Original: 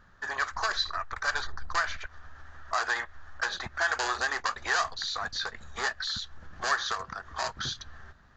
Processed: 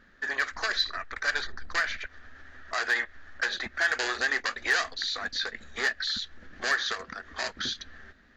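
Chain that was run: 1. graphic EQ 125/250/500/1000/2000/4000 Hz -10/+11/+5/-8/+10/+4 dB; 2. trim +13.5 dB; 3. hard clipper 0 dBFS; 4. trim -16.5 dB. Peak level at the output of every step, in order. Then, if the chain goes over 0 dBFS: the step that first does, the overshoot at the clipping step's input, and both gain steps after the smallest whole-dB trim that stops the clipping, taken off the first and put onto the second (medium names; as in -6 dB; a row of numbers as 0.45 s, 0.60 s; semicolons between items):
-9.5 dBFS, +4.0 dBFS, 0.0 dBFS, -16.5 dBFS; step 2, 4.0 dB; step 2 +9.5 dB, step 4 -12.5 dB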